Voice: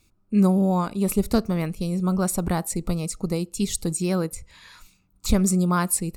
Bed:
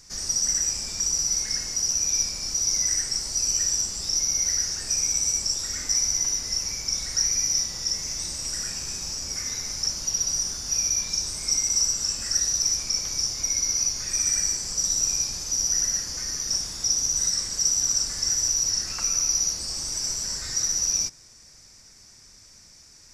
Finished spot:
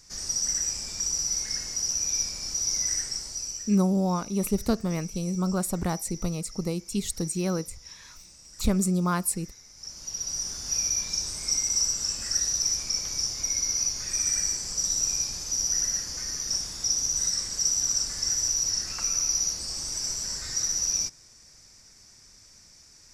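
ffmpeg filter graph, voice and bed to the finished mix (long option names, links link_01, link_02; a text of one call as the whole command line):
ffmpeg -i stem1.wav -i stem2.wav -filter_complex "[0:a]adelay=3350,volume=-4dB[link_01];[1:a]volume=13.5dB,afade=type=out:start_time=2.97:duration=0.79:silence=0.158489,afade=type=in:start_time=9.74:duration=0.94:silence=0.141254[link_02];[link_01][link_02]amix=inputs=2:normalize=0" out.wav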